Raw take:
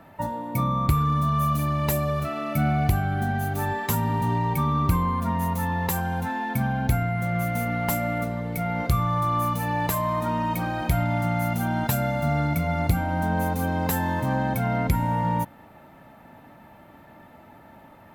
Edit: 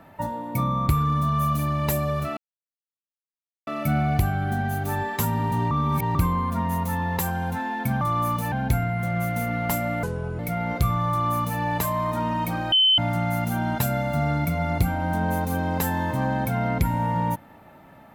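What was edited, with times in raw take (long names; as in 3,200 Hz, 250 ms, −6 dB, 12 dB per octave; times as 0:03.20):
0:02.37: splice in silence 1.30 s
0:04.41–0:04.85: reverse
0:08.22–0:08.48: play speed 72%
0:09.18–0:09.69: duplicate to 0:06.71
0:10.81–0:11.07: beep over 3,060 Hz −14.5 dBFS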